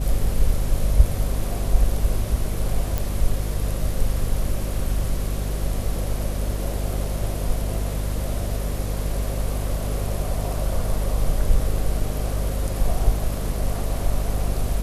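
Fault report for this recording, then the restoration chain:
mains hum 50 Hz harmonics 5 −26 dBFS
0:02.98: click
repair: click removal
hum removal 50 Hz, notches 5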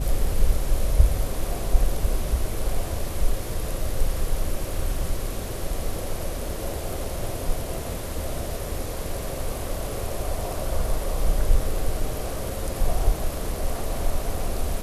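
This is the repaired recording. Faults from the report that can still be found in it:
none of them is left

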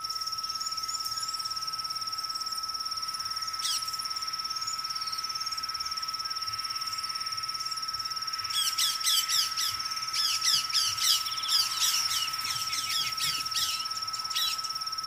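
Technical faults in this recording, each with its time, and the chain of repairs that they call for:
surface crackle 43 per second −39 dBFS
whistle 1,300 Hz −37 dBFS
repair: click removal
notch filter 1,300 Hz, Q 30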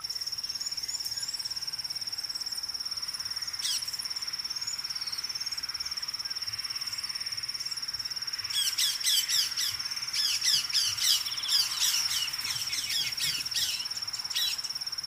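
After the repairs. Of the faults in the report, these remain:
none of them is left

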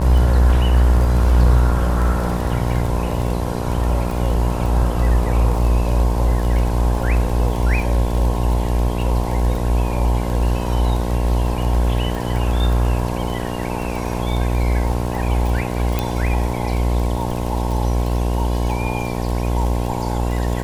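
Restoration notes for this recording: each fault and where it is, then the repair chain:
mains buzz 60 Hz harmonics 18 −22 dBFS
surface crackle 28 per second −23 dBFS
0:15.99: click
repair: click removal
hum removal 60 Hz, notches 18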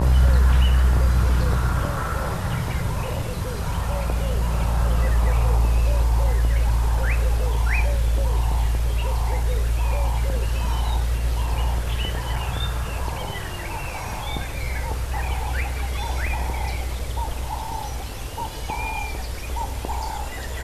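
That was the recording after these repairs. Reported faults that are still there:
none of them is left

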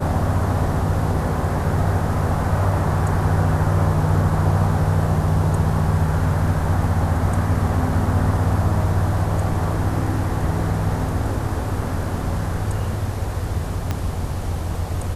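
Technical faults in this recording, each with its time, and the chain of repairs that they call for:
0:13.91: click −10 dBFS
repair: click removal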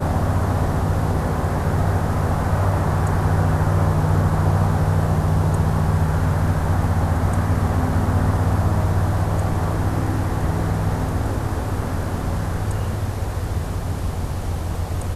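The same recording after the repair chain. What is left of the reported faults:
0:13.91: click

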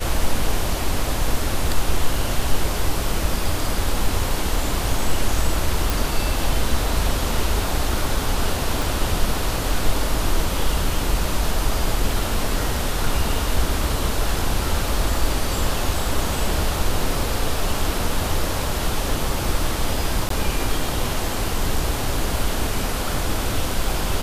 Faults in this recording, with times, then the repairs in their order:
0:05.90: click
0:08.82: click
0:20.29–0:20.30: drop-out 13 ms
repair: click removal
repair the gap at 0:20.29, 13 ms

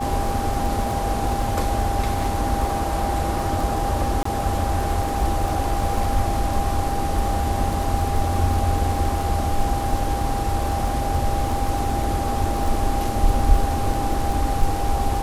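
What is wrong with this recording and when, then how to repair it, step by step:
surface crackle 23 per second −25 dBFS
whistle 800 Hz −26 dBFS
0:04.23–0:04.25: drop-out 24 ms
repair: click removal
notch filter 800 Hz, Q 30
repair the gap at 0:04.23, 24 ms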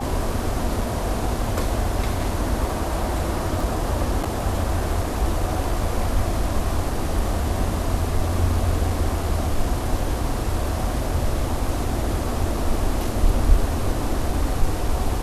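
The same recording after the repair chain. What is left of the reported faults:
none of them is left

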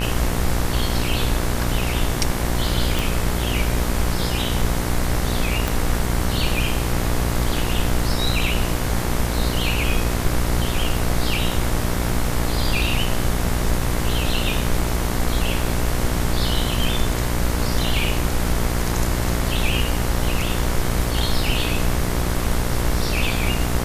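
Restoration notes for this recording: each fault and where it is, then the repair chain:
mains buzz 60 Hz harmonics 38 −24 dBFS
0:02.99: click
0:05.68: click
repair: click removal
hum removal 60 Hz, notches 38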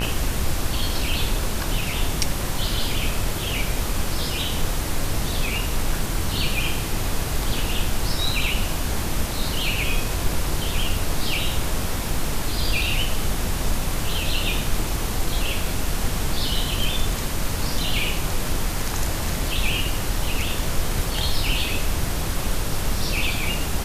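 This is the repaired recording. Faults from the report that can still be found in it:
0:05.68: click

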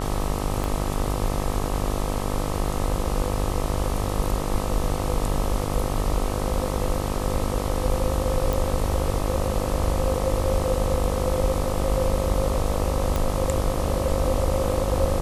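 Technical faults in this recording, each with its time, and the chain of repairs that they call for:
mains buzz 50 Hz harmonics 26 −28 dBFS
0:00.64: click
0:08.53: click
0:13.16: click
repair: click removal
hum removal 50 Hz, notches 26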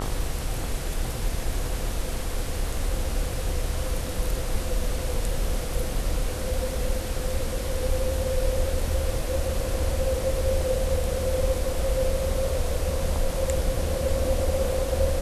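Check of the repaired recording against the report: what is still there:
0:00.64: click

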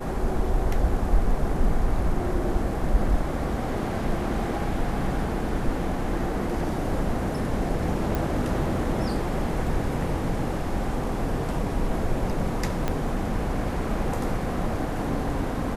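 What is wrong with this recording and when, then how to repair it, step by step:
0:08.15: click
0:12.88: click −12 dBFS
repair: click removal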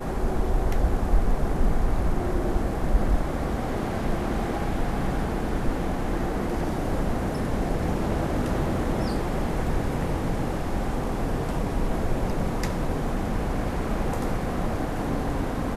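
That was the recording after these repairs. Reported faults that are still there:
0:12.88: click

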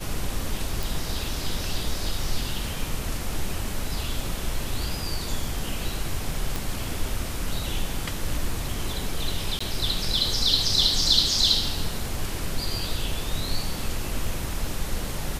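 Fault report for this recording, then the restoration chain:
0:00.83: click
0:06.56: click
0:09.59–0:09.61: drop-out 15 ms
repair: click removal
repair the gap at 0:09.59, 15 ms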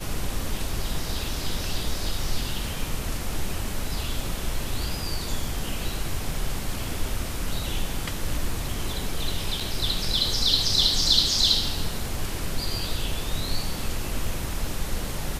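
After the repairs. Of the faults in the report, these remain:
none of them is left

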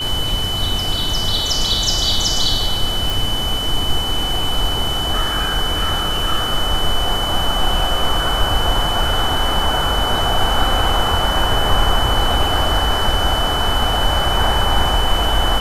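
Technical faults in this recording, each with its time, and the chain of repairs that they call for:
whistle 3,000 Hz −21 dBFS
0:03.10: click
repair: click removal
notch filter 3,000 Hz, Q 30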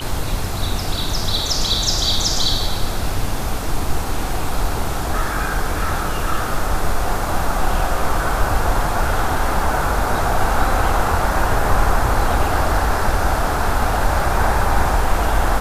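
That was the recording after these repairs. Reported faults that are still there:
none of them is left

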